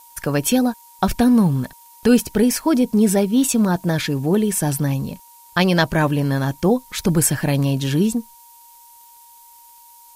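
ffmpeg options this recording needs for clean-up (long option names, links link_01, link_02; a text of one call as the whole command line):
ffmpeg -i in.wav -af "adeclick=threshold=4,bandreject=frequency=940:width=30,afftdn=noise_reduction=17:noise_floor=-47" out.wav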